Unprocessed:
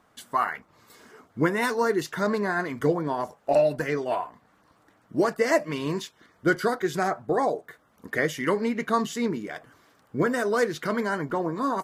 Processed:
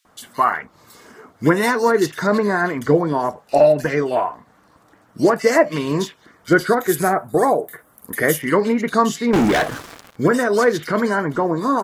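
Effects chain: 6.78–8.42 resonant high shelf 7900 Hz +13 dB, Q 1.5; bands offset in time highs, lows 50 ms, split 2700 Hz; 9.33–10.16 sample leveller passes 5; gain +8 dB

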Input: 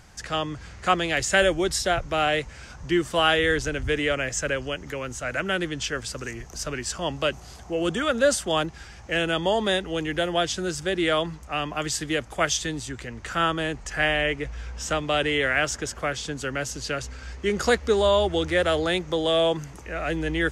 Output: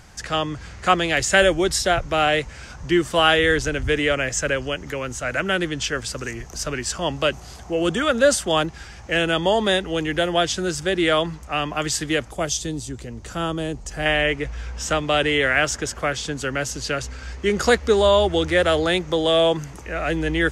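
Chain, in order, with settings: 12.31–14.06 bell 1800 Hz -12.5 dB 1.9 oct; gain +4 dB

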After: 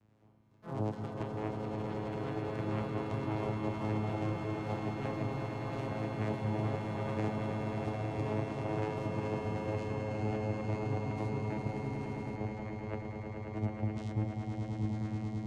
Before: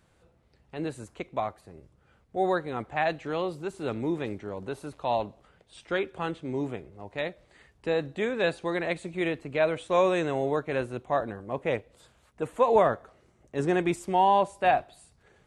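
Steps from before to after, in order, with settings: tape stop at the end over 1.84 s; negative-ratio compressor -30 dBFS, ratio -0.5; vocoder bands 4, saw 107 Hz; on a send: swelling echo 0.107 s, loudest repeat 8, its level -7 dB; on the sum: echoes that change speed 85 ms, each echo +4 st, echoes 3, each echo -6 dB; gain -6 dB

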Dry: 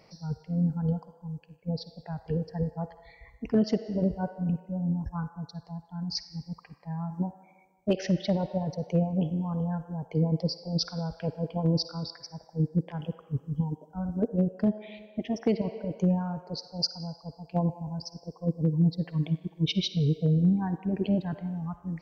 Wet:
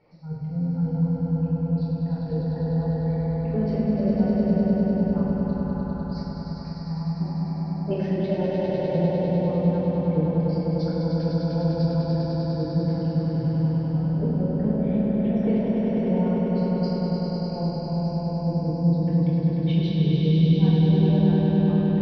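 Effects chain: air absorption 330 m; swelling echo 0.1 s, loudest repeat 5, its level -4 dB; reverb RT60 1.4 s, pre-delay 3 ms, DRR -4.5 dB; gain -7.5 dB

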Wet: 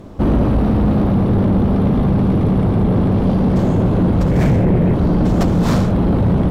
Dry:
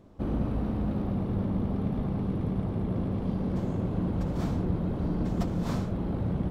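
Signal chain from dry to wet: 4.31–4.94 graphic EQ 125/500/1000/2000/4000 Hz +7/+5/-9/+11/-5 dB; in parallel at -2.5 dB: vocal rider 0.5 s; on the sum: sine folder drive 11 dB, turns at -7 dBFS; gain -2.5 dB

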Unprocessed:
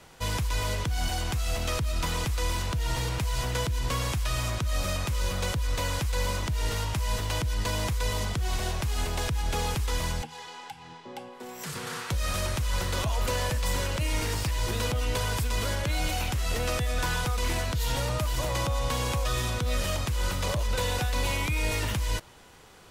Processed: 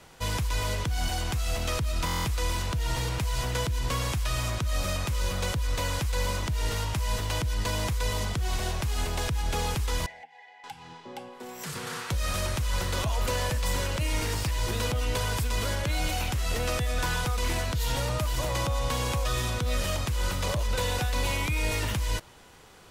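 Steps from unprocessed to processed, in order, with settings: 10.06–10.64 double band-pass 1200 Hz, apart 1.4 oct; stuck buffer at 2.05, samples 1024, times 8

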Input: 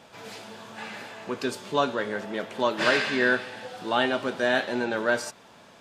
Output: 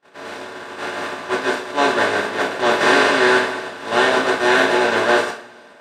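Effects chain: per-bin compression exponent 0.2; gate -16 dBFS, range -53 dB; two-slope reverb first 0.38 s, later 1.8 s, from -22 dB, DRR -2 dB; gain -2 dB

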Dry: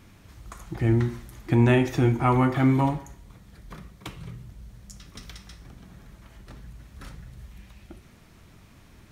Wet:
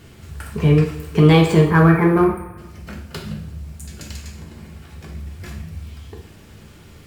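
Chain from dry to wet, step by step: spectral delete 2.07–3.33, 2000–6800 Hz; varispeed +29%; in parallel at -11 dB: hard clip -23 dBFS, distortion -7 dB; on the sum: two-slope reverb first 0.52 s, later 1.5 s, from -16 dB, DRR 0.5 dB; gain +3 dB

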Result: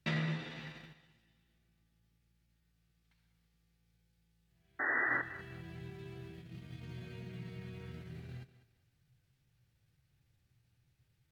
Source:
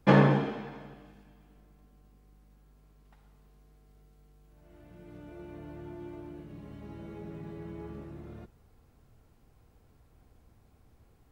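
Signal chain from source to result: compressor 2:1, threshold -51 dBFS, peak gain reduction 19 dB; gate -50 dBFS, range -17 dB; low shelf 120 Hz -12 dB; pitch shift +2 st; painted sound noise, 4.79–5.22, 240–2000 Hz -37 dBFS; ten-band EQ 125 Hz +12 dB, 250 Hz -9 dB, 500 Hz -9 dB, 1000 Hz -12 dB, 2000 Hz +4 dB, 4000 Hz +5 dB; thinning echo 0.197 s, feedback 28%, high-pass 170 Hz, level -14.5 dB; gain +8 dB

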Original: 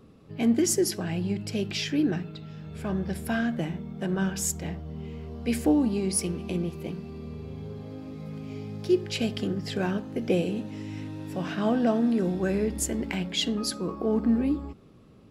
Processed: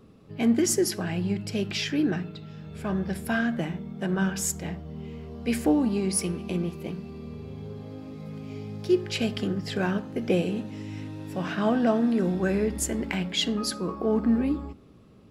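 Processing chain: dynamic EQ 1400 Hz, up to +4 dB, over -43 dBFS, Q 0.87; on a send: reverb RT60 0.70 s, pre-delay 5 ms, DRR 17.5 dB

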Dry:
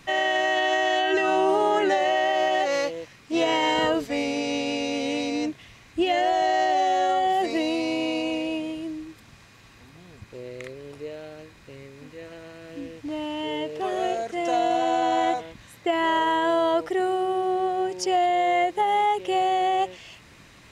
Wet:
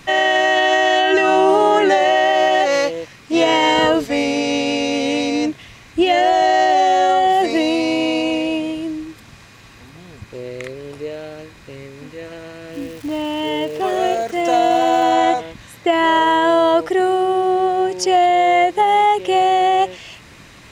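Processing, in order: 12.7–15.13 crackle 380/s -39 dBFS; gain +8 dB

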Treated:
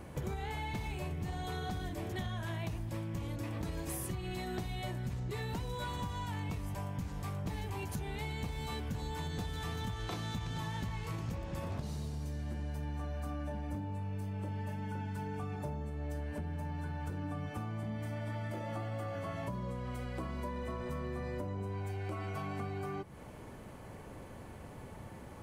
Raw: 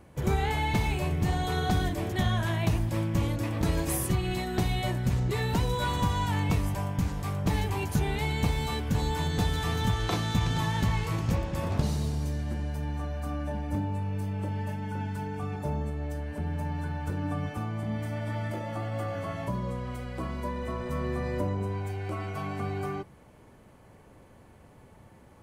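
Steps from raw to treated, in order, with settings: compressor, threshold -42 dBFS, peak gain reduction 20 dB; soft clip -31 dBFS, distortion -29 dB; gain +5.5 dB

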